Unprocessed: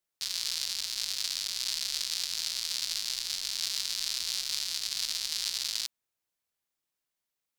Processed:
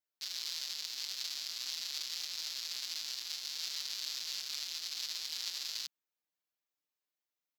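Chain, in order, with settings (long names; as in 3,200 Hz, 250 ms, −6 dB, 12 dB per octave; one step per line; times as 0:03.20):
Butterworth high-pass 180 Hz 36 dB per octave
parametric band 9,100 Hz −15 dB 0.28 octaves
comb filter 6.6 ms, depth 98%
level −9 dB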